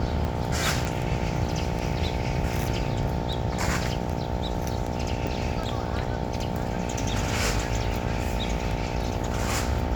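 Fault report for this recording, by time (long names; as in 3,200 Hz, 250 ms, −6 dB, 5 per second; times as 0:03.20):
mains buzz 60 Hz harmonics 15 −32 dBFS
scratch tick
0:00.85: click
0:05.27: click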